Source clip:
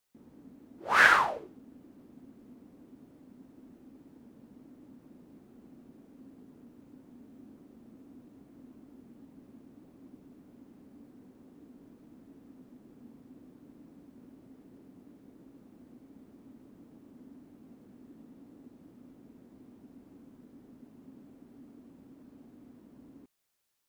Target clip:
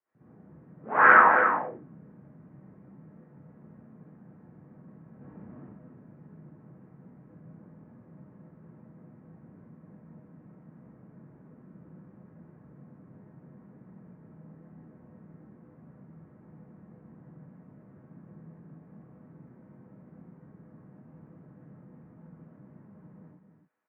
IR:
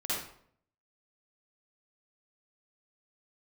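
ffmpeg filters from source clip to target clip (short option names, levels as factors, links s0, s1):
-filter_complex "[0:a]asettb=1/sr,asplit=3[s0][s1][s2];[s0]atrim=end=5.154[s3];[s1]atrim=start=5.15:end=5.63,asetpts=PTS-STARTPTS,afade=t=in:d=0.004:c=qsin,afade=t=out:st=0.476:d=0.004:c=qsin,acontrast=79[s4];[s2]atrim=start=5.626[s5];[s3][s4]acrossfade=d=0.004:c1=hsin:c2=qsin[s6];[s6][s5]acrossfade=d=0.004:c1=qsin:c2=hsin,aecho=1:1:269:0.422[s7];[1:a]atrim=start_sample=2205,afade=t=out:st=0.2:d=0.01,atrim=end_sample=9261[s8];[s7][s8]afir=irnorm=-1:irlink=0,highpass=f=280:t=q:w=0.5412,highpass=f=280:t=q:w=1.307,lowpass=f=2100:t=q:w=0.5176,lowpass=f=2100:t=q:w=0.7071,lowpass=f=2100:t=q:w=1.932,afreqshift=-110"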